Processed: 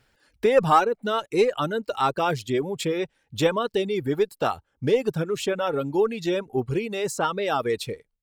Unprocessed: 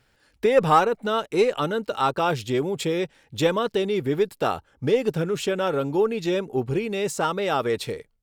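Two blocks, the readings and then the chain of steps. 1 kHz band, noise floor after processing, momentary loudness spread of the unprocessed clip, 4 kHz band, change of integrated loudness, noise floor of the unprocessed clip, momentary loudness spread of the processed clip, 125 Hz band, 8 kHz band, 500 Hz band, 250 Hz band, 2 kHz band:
−0.5 dB, −73 dBFS, 6 LU, −1.0 dB, −0.5 dB, −65 dBFS, 7 LU, −1.5 dB, −0.5 dB, −1.0 dB, −1.5 dB, −0.5 dB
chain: reverb reduction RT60 0.98 s

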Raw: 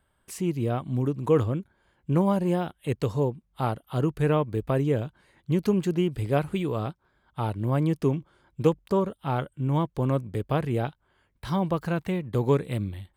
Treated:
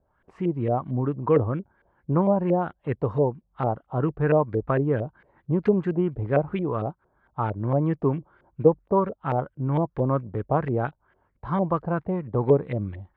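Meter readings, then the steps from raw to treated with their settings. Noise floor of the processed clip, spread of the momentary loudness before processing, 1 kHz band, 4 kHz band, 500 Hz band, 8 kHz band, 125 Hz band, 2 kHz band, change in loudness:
−71 dBFS, 8 LU, +3.5 dB, below −10 dB, +3.5 dB, can't be measured, 0.0 dB, +1.0 dB, +1.5 dB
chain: auto-filter low-pass saw up 4.4 Hz 510–2,100 Hz

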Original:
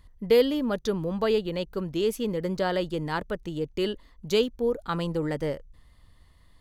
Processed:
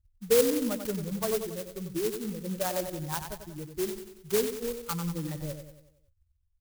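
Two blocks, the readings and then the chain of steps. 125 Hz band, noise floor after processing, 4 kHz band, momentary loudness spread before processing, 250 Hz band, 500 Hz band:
−3.0 dB, −72 dBFS, −5.5 dB, 9 LU, −4.5 dB, −4.5 dB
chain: spectral dynamics exaggerated over time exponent 2
repeating echo 93 ms, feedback 50%, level −8 dB
converter with an unsteady clock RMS 0.12 ms
level −1 dB

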